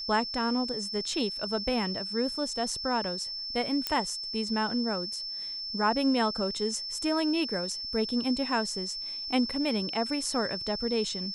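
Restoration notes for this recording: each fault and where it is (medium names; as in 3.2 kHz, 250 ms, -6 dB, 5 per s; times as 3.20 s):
whine 5.3 kHz -34 dBFS
3.87 s: pop -13 dBFS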